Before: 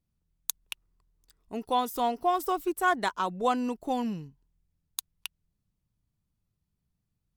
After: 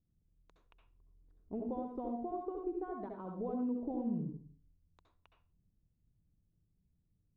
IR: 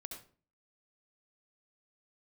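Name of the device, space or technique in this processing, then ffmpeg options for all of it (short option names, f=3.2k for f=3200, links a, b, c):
television next door: -filter_complex "[0:a]acompressor=threshold=-35dB:ratio=5,lowpass=460[a];[1:a]atrim=start_sample=2205[b];[a][b]afir=irnorm=-1:irlink=0,volume=6.5dB"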